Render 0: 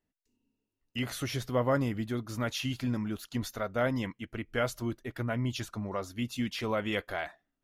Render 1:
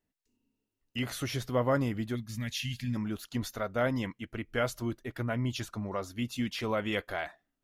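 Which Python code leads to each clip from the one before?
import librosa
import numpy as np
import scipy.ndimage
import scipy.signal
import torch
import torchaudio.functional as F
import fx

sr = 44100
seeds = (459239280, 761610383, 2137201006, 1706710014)

y = fx.spec_box(x, sr, start_s=2.15, length_s=0.81, low_hz=240.0, high_hz=1600.0, gain_db=-16)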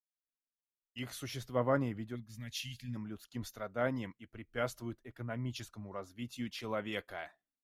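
y = fx.band_widen(x, sr, depth_pct=70)
y = F.gain(torch.from_numpy(y), -7.5).numpy()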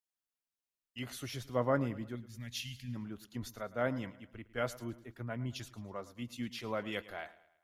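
y = fx.echo_feedback(x, sr, ms=109, feedback_pct=46, wet_db=-18)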